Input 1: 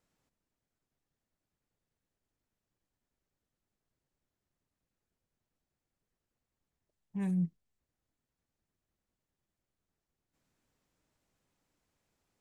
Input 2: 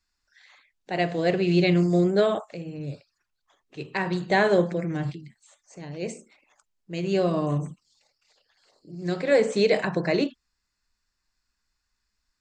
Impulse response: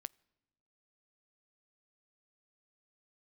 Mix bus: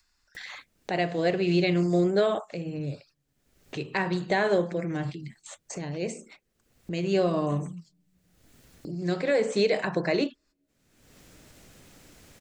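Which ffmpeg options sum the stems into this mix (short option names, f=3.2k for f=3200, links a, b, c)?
-filter_complex "[0:a]equalizer=f=960:w=2:g=-7,acompressor=threshold=-33dB:ratio=6,adelay=350,volume=-5.5dB,asplit=2[a][b];[b]volume=-6.5dB[c];[1:a]agate=range=-52dB:threshold=-56dB:ratio=16:detection=peak,adynamicequalizer=threshold=0.02:dfrequency=150:dqfactor=0.84:tfrequency=150:tqfactor=0.84:attack=5:release=100:ratio=0.375:range=2:mode=cutabove:tftype=bell,volume=-0.5dB,asplit=3[d][e][f];[e]volume=-20.5dB[g];[f]apad=whole_len=562428[h];[a][h]sidechaincompress=threshold=-34dB:ratio=3:attack=16:release=1210[i];[2:a]atrim=start_sample=2205[j];[c][g]amix=inputs=2:normalize=0[k];[k][j]afir=irnorm=-1:irlink=0[l];[i][d][l]amix=inputs=3:normalize=0,acompressor=mode=upward:threshold=-28dB:ratio=2.5,alimiter=limit=-14dB:level=0:latency=1:release=242"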